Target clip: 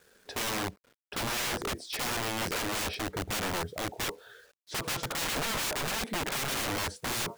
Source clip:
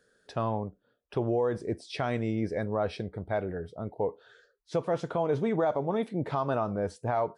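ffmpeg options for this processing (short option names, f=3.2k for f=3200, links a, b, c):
-af "acrusher=bits=10:mix=0:aa=0.000001,aeval=exprs='(mod(39.8*val(0)+1,2)-1)/39.8':c=same,volume=5dB"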